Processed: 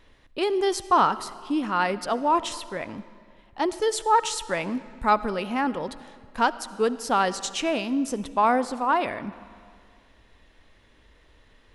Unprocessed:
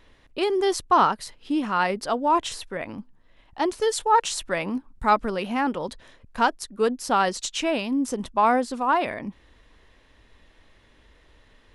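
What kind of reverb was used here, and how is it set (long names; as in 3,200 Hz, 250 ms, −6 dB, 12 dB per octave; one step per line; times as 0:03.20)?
comb and all-pass reverb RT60 2.1 s, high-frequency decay 0.8×, pre-delay 30 ms, DRR 15.5 dB
level −1 dB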